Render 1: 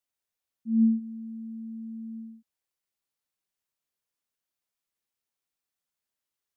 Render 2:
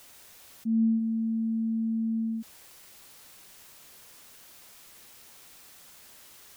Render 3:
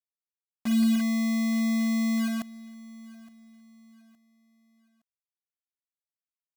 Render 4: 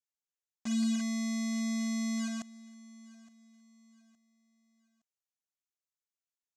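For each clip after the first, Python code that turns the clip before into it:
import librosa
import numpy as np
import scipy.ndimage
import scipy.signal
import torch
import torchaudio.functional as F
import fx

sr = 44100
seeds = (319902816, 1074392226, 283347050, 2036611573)

y1 = fx.env_flatten(x, sr, amount_pct=70)
y1 = y1 * 10.0 ** (-4.0 / 20.0)
y2 = fx.quant_dither(y1, sr, seeds[0], bits=6, dither='none')
y2 = fx.echo_feedback(y2, sr, ms=866, feedback_pct=35, wet_db=-21.0)
y2 = y2 * 10.0 ** (2.0 / 20.0)
y3 = fx.lowpass_res(y2, sr, hz=6800.0, q=3.6)
y3 = y3 * 10.0 ** (-7.5 / 20.0)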